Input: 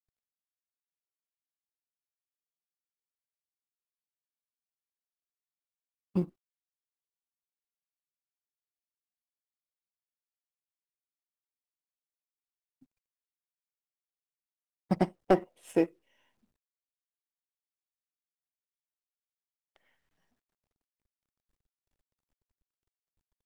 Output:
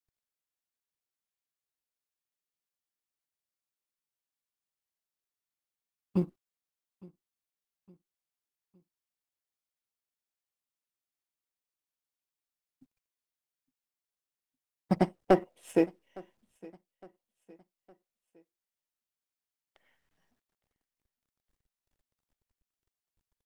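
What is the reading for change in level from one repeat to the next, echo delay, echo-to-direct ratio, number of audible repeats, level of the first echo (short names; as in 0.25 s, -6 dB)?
-7.0 dB, 0.861 s, -22.5 dB, 2, -23.5 dB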